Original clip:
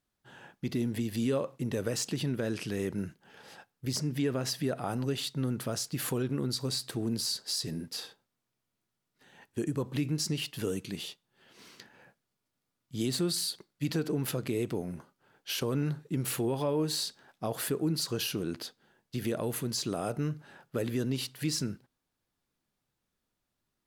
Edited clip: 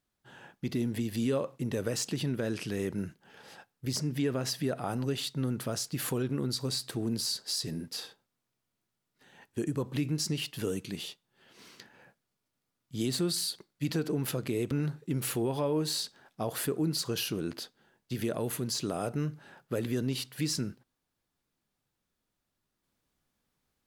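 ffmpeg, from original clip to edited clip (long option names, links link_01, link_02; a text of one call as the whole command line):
ffmpeg -i in.wav -filter_complex "[0:a]asplit=2[link_01][link_02];[link_01]atrim=end=14.712[link_03];[link_02]atrim=start=15.738[link_04];[link_03][link_04]acrossfade=duration=0.004:curve1=hsin:curve2=hsin" out.wav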